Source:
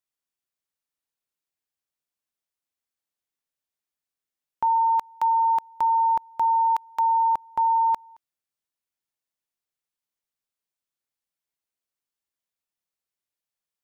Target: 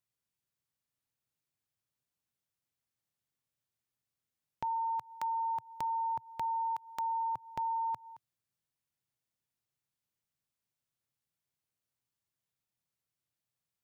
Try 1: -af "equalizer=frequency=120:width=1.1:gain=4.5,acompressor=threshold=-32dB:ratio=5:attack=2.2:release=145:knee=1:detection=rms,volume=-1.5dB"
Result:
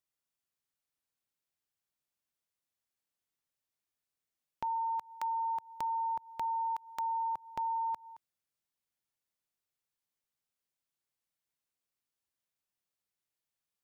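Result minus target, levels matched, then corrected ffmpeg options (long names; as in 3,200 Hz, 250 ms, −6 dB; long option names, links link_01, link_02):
125 Hz band −6.0 dB
-af "equalizer=frequency=120:width=1.1:gain=15.5,acompressor=threshold=-32dB:ratio=5:attack=2.2:release=145:knee=1:detection=rms,volume=-1.5dB"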